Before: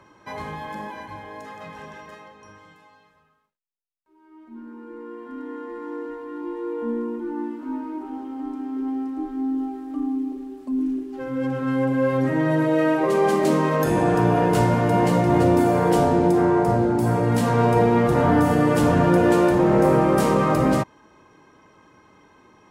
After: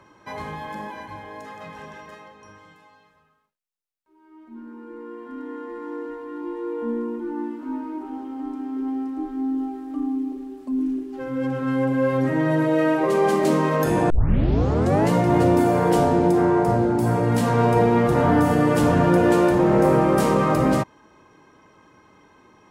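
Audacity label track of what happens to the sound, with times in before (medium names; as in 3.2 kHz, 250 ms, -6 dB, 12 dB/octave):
14.100000	14.100000	tape start 1.01 s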